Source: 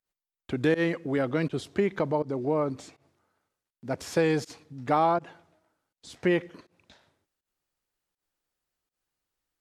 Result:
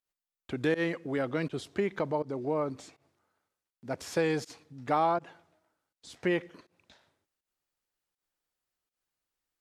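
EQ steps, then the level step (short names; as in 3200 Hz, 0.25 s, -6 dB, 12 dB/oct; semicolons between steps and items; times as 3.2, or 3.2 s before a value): low shelf 380 Hz -3.5 dB; -2.5 dB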